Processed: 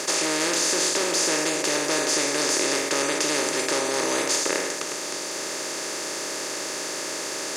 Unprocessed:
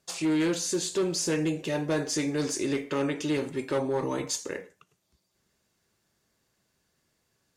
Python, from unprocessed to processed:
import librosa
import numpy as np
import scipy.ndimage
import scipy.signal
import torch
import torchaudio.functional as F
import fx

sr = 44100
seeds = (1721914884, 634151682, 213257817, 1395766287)

y = fx.bin_compress(x, sr, power=0.2)
y = fx.highpass(y, sr, hz=1000.0, slope=6)
y = F.gain(torch.from_numpy(y), 2.0).numpy()